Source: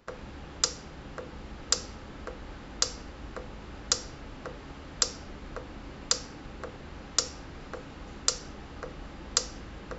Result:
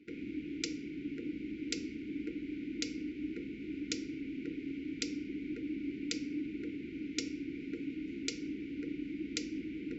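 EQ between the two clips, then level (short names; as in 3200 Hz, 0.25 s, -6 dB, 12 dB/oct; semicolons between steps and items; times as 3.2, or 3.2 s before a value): vowel filter u; brick-wall FIR band-stop 500–1400 Hz; +15.0 dB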